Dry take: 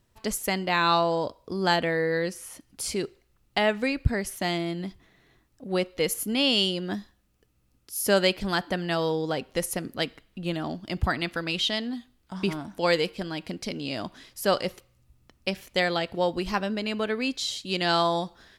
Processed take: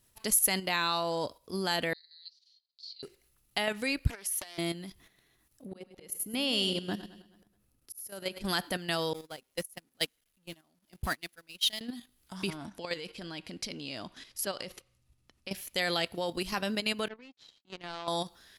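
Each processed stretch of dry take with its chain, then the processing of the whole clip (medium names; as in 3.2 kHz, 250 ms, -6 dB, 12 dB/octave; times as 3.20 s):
1.93–3.03 s: Butterworth band-pass 4.2 kHz, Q 4.7 + distance through air 150 m
4.10–4.58 s: high-pass 420 Hz + compression 10:1, threshold -36 dBFS + loudspeaker Doppler distortion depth 0.54 ms
5.65–8.45 s: treble shelf 2.1 kHz -9.5 dB + slow attack 505 ms + feedback delay 106 ms, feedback 53%, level -11 dB
9.13–11.81 s: jump at every zero crossing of -34.5 dBFS + gate -25 dBFS, range -34 dB
12.50–15.51 s: distance through air 64 m + compression 2.5:1, threshold -31 dBFS
17.08–18.08 s: high-pass 98 Hz + power-law waveshaper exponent 2 + tape spacing loss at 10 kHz 33 dB
whole clip: peaking EQ 11 kHz +12 dB 0.31 oct; level held to a coarse grid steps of 10 dB; treble shelf 2.3 kHz +10 dB; trim -2.5 dB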